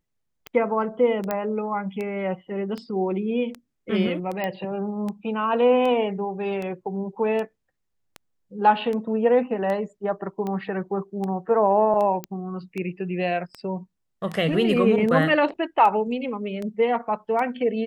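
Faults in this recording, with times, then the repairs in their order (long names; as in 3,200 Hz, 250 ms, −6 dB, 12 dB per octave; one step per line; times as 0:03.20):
scratch tick 78 rpm −19 dBFS
0:01.31: click −12 dBFS
0:04.44: click −15 dBFS
0:12.24: click −15 dBFS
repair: click removal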